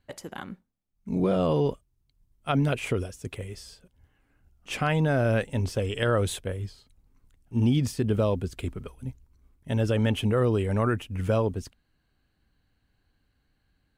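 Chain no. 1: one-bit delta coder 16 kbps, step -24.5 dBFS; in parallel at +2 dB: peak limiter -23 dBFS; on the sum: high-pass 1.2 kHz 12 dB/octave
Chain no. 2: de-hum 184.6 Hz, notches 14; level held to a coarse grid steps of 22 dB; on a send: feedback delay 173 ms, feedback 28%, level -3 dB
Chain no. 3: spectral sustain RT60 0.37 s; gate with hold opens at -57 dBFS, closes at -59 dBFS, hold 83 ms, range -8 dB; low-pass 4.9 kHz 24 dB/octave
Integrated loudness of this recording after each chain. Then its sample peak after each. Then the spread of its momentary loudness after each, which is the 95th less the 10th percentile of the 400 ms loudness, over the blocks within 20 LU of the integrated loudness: -30.0 LUFS, -35.5 LUFS, -26.5 LUFS; -15.0 dBFS, -14.0 dBFS, -12.0 dBFS; 8 LU, 21 LU, 15 LU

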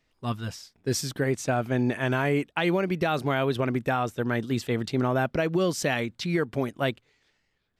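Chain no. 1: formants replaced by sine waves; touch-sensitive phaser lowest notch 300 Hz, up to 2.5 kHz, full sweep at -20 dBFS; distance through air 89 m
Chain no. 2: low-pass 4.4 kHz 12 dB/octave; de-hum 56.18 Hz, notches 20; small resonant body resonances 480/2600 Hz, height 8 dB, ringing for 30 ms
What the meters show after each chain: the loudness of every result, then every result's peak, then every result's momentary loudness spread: -28.5 LUFS, -26.0 LUFS; -11.0 dBFS, -11.0 dBFS; 10 LU, 7 LU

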